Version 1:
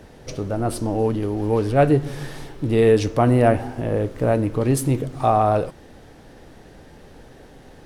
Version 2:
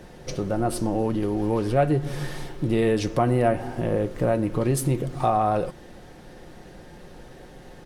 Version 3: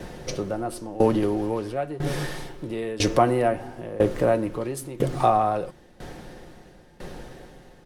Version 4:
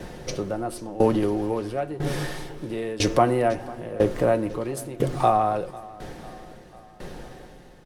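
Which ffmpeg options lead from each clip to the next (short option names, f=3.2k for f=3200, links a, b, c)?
-af "aecho=1:1:5.6:0.39,acompressor=threshold=-21dB:ratio=2"
-filter_complex "[0:a]acrossover=split=250[a][b];[a]asoftclip=type=tanh:threshold=-33dB[c];[c][b]amix=inputs=2:normalize=0,aeval=exprs='val(0)*pow(10,-19*if(lt(mod(1*n/s,1),2*abs(1)/1000),1-mod(1*n/s,1)/(2*abs(1)/1000),(mod(1*n/s,1)-2*abs(1)/1000)/(1-2*abs(1)/1000))/20)':c=same,volume=8.5dB"
-af "aecho=1:1:498|996|1494|1992:0.0944|0.0529|0.0296|0.0166"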